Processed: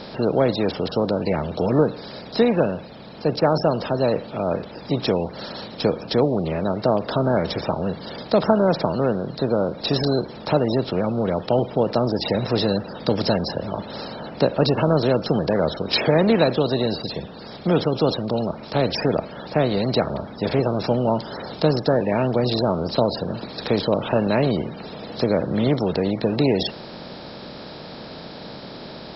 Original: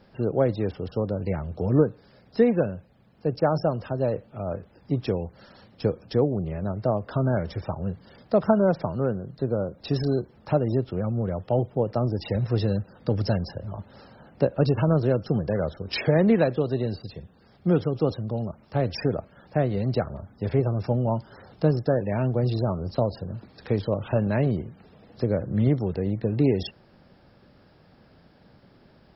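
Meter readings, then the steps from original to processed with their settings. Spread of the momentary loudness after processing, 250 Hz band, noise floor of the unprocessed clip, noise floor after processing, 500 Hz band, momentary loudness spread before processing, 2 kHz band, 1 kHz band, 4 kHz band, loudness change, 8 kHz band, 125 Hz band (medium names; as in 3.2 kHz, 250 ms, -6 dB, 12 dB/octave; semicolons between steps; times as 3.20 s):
14 LU, +4.0 dB, -57 dBFS, -38 dBFS, +5.0 dB, 10 LU, +7.0 dB, +7.5 dB, +13.5 dB, +4.0 dB, no reading, -0.5 dB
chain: spectral levelling over time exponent 0.6; fifteen-band graphic EQ 100 Hz -8 dB, 1 kHz +4 dB, 4 kHz +12 dB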